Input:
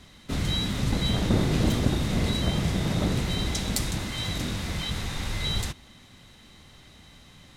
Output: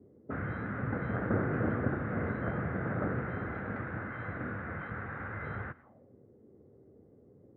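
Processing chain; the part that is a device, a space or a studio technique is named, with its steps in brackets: envelope filter bass rig (envelope low-pass 330–1500 Hz up, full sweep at -31 dBFS; speaker cabinet 87–2000 Hz, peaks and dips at 170 Hz -5 dB, 490 Hz +5 dB, 960 Hz -5 dB); gain -6.5 dB

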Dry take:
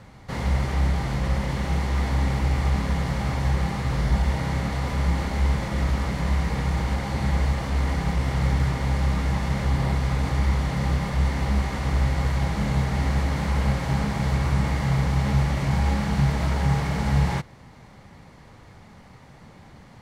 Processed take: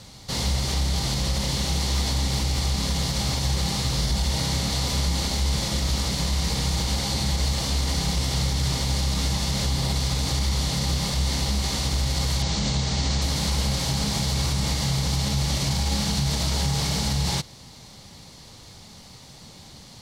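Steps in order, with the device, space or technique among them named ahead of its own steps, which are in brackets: 12.42–13.22 steep low-pass 7800 Hz 36 dB/oct; over-bright horn tweeter (resonant high shelf 2800 Hz +14 dB, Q 1.5; limiter -15 dBFS, peak gain reduction 7 dB)

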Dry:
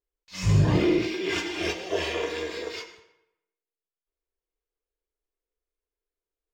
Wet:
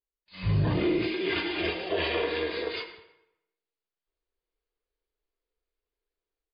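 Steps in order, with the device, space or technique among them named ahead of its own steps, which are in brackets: low-bitrate web radio (AGC gain up to 11 dB; limiter -10 dBFS, peak gain reduction 6.5 dB; gain -8 dB; MP3 32 kbps 11025 Hz)

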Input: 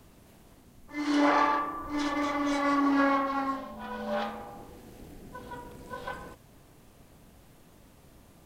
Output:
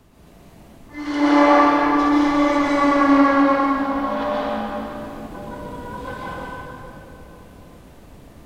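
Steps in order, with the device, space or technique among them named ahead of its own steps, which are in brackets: swimming-pool hall (reverb RT60 3.4 s, pre-delay 0.115 s, DRR -7.5 dB; high shelf 5300 Hz -6 dB); gain +2.5 dB

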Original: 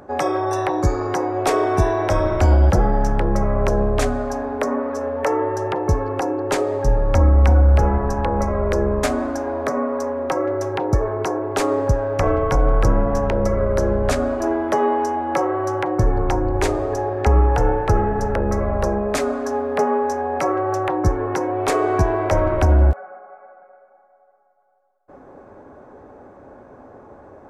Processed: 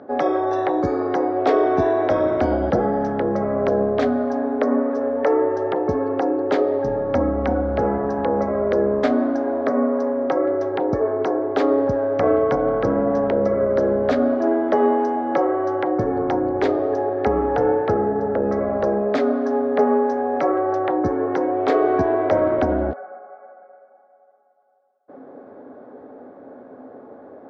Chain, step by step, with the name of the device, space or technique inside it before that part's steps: kitchen radio (speaker cabinet 170–4000 Hz, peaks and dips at 260 Hz +9 dB, 470 Hz +6 dB, 680 Hz +4 dB, 980 Hz -4 dB, 2600 Hz -7 dB); 17.94–18.44 LPF 1400 Hz 6 dB/oct; gain -1.5 dB

